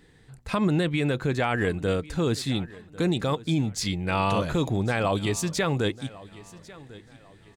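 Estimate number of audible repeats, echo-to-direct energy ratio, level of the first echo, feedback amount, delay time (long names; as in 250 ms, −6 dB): 2, −19.5 dB, −20.0 dB, 33%, 1,097 ms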